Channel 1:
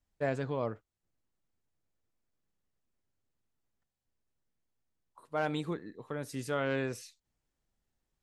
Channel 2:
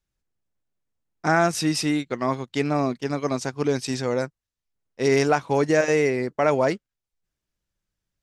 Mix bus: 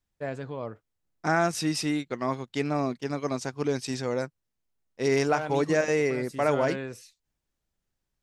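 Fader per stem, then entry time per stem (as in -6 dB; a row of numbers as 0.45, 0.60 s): -1.5, -4.5 dB; 0.00, 0.00 s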